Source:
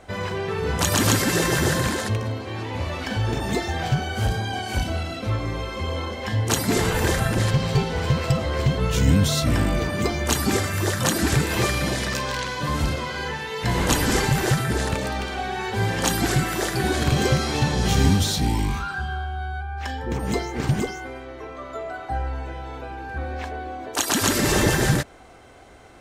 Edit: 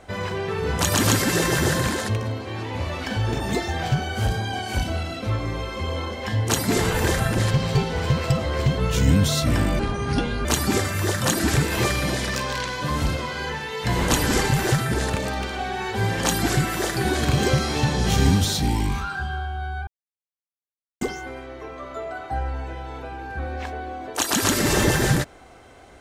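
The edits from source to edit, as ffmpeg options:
ffmpeg -i in.wav -filter_complex "[0:a]asplit=5[link_01][link_02][link_03][link_04][link_05];[link_01]atrim=end=9.794[link_06];[link_02]atrim=start=9.79:end=10.24,asetpts=PTS-STARTPTS,asetrate=29988,aresample=44100[link_07];[link_03]atrim=start=10.236:end=19.66,asetpts=PTS-STARTPTS,afade=type=out:start_time=9.42:duration=0.004:curve=hsin[link_08];[link_04]atrim=start=19.66:end=20.8,asetpts=PTS-STARTPTS,volume=0[link_09];[link_05]atrim=start=20.8,asetpts=PTS-STARTPTS,afade=type=in:duration=0.004:curve=hsin[link_10];[link_06][link_07]acrossfade=duration=0.004:curve1=hsin:curve2=hsin[link_11];[link_08][link_09][link_10]concat=n=3:v=0:a=1[link_12];[link_11][link_12]acrossfade=duration=0.004:curve1=hsin:curve2=hsin" out.wav

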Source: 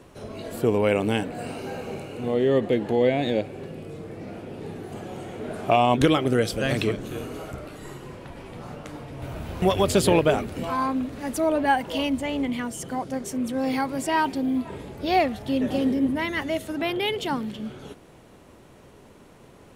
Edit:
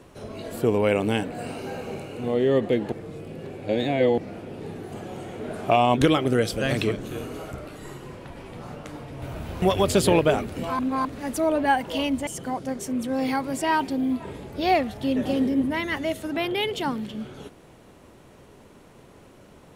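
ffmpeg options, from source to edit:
ffmpeg -i in.wav -filter_complex "[0:a]asplit=6[link_01][link_02][link_03][link_04][link_05][link_06];[link_01]atrim=end=2.922[link_07];[link_02]atrim=start=2.918:end=4.182,asetpts=PTS-STARTPTS,areverse[link_08];[link_03]atrim=start=4.178:end=10.792[link_09];[link_04]atrim=start=10.788:end=11.052,asetpts=PTS-STARTPTS,areverse[link_10];[link_05]atrim=start=11.048:end=12.272[link_11];[link_06]atrim=start=12.718[link_12];[link_07][link_08]acrossfade=duration=0.004:curve1=hsin:curve2=hsin[link_13];[link_13][link_09]acrossfade=duration=0.004:curve1=hsin:curve2=hsin[link_14];[link_14][link_10]acrossfade=duration=0.004:curve1=hsin:curve2=hsin[link_15];[link_15][link_11]acrossfade=duration=0.004:curve1=hsin:curve2=hsin[link_16];[link_16][link_12]acrossfade=duration=0.004:curve1=hsin:curve2=hsin" out.wav

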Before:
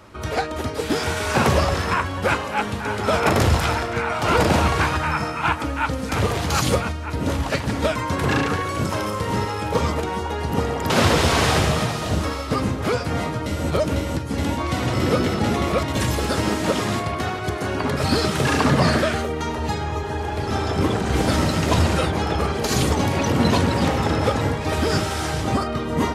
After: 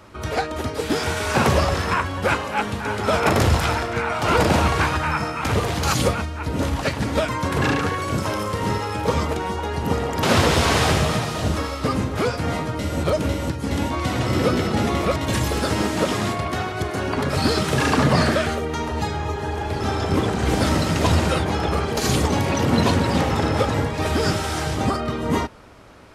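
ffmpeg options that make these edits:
ffmpeg -i in.wav -filter_complex "[0:a]asplit=2[link_01][link_02];[link_01]atrim=end=5.442[link_03];[link_02]atrim=start=6.108[link_04];[link_03][link_04]acrossfade=duration=0.004:curve1=hsin:curve2=hsin" out.wav

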